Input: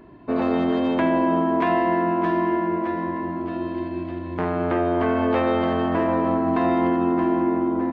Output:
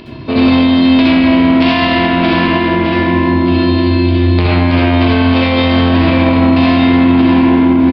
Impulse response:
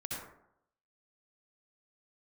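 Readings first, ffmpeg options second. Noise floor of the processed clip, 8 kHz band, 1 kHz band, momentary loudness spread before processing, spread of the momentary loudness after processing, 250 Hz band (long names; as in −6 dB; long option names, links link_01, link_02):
−14 dBFS, can't be measured, +7.0 dB, 8 LU, 3 LU, +13.5 dB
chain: -filter_complex "[0:a]equalizer=frequency=99:width=1:gain=7.5,areverse,acompressor=mode=upward:threshold=-29dB:ratio=2.5,areverse,asoftclip=type=tanh:threshold=-17.5dB,aexciter=amount=5.2:drive=8.1:freq=2400,aresample=11025,aeval=exprs='sgn(val(0))*max(abs(val(0))-0.00188,0)':channel_layout=same,aresample=44100[link_01];[1:a]atrim=start_sample=2205[link_02];[link_01][link_02]afir=irnorm=-1:irlink=0,alimiter=level_in=15dB:limit=-1dB:release=50:level=0:latency=1,volume=-1dB"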